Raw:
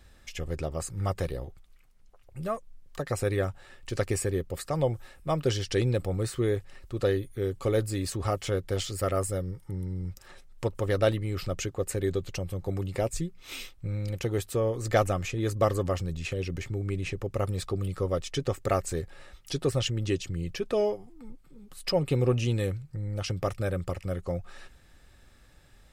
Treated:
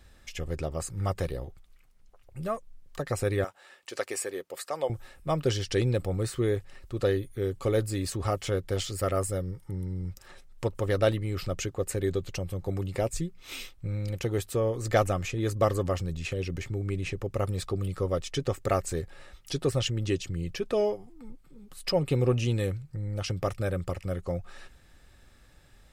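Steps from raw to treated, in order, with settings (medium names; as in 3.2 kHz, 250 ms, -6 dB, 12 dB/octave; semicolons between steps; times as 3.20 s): 3.44–4.90 s: high-pass 490 Hz 12 dB/octave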